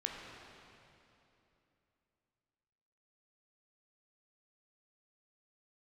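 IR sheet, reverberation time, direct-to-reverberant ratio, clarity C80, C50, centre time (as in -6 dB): 2.9 s, -0.5 dB, 2.0 dB, 1.0 dB, 0.117 s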